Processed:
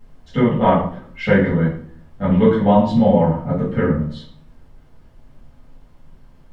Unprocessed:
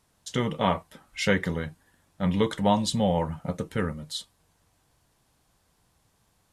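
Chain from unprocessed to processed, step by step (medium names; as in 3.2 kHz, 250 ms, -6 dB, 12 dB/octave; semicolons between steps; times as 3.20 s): low-pass 1.7 kHz 12 dB/octave; added noise brown -58 dBFS; reverberation RT60 0.55 s, pre-delay 4 ms, DRR -9.5 dB; trim -1 dB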